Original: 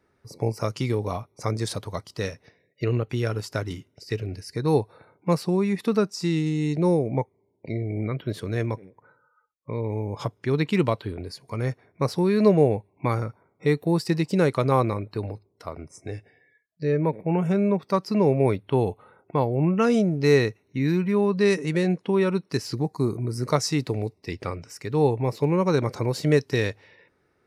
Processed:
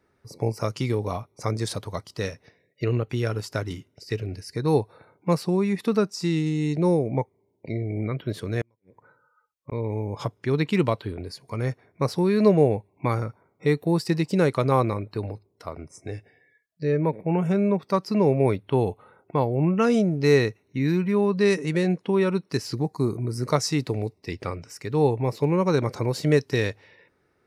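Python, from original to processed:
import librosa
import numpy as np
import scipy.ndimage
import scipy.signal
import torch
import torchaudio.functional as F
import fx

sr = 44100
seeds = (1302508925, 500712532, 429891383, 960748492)

y = fx.gate_flip(x, sr, shuts_db=-23.0, range_db=-40, at=(8.61, 9.72))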